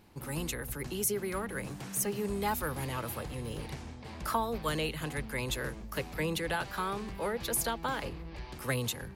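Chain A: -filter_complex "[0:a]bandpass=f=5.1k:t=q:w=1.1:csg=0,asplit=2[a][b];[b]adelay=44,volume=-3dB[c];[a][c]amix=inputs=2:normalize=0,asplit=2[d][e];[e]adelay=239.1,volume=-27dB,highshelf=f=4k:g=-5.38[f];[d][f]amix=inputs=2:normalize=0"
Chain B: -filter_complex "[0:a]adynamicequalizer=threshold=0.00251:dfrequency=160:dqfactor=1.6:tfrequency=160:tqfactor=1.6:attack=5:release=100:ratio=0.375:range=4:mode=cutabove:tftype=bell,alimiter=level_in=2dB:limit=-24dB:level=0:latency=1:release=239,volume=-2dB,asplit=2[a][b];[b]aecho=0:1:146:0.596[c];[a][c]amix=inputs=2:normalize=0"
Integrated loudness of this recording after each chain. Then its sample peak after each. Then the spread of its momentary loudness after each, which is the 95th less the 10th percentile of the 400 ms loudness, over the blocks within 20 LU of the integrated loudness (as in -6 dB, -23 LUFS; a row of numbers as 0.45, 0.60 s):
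-42.0, -37.0 LUFS; -22.0, -23.5 dBFS; 13, 6 LU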